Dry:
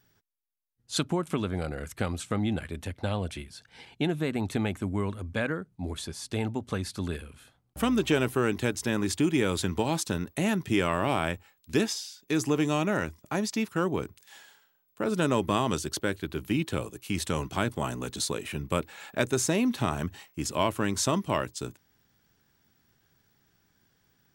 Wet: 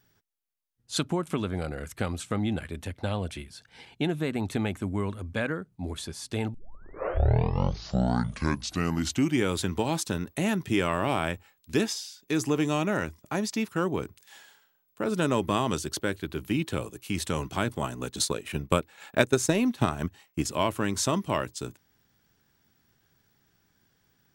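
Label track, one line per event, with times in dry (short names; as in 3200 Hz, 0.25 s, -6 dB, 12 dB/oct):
6.540000	6.540000	tape start 2.99 s
17.820000	20.450000	transient shaper attack +6 dB, sustain -8 dB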